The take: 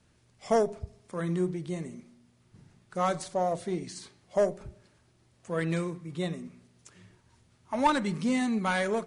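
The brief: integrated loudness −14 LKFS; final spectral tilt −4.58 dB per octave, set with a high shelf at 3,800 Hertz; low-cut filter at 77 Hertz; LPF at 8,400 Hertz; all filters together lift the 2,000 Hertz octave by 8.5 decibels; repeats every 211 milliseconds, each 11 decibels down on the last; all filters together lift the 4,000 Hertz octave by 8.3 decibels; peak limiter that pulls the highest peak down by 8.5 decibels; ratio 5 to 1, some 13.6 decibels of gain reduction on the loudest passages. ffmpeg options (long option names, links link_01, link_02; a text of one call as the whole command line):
ffmpeg -i in.wav -af "highpass=77,lowpass=8400,equalizer=frequency=2000:width_type=o:gain=8.5,highshelf=frequency=3800:gain=6,equalizer=frequency=4000:width_type=o:gain=4,acompressor=threshold=-32dB:ratio=5,alimiter=level_in=5dB:limit=-24dB:level=0:latency=1,volume=-5dB,aecho=1:1:211|422|633:0.282|0.0789|0.0221,volume=25dB" out.wav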